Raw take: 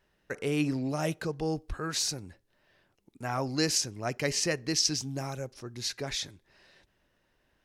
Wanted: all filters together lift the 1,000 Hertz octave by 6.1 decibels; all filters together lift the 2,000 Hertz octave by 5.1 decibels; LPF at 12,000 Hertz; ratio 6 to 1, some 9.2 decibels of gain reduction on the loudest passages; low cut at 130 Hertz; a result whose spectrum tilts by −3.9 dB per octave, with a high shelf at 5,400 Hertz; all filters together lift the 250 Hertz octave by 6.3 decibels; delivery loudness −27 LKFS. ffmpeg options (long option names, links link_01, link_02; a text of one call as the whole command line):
ffmpeg -i in.wav -af "highpass=130,lowpass=12000,equalizer=frequency=250:width_type=o:gain=8,equalizer=frequency=1000:width_type=o:gain=7,equalizer=frequency=2000:width_type=o:gain=5,highshelf=frequency=5400:gain=-7.5,acompressor=threshold=-29dB:ratio=6,volume=7.5dB" out.wav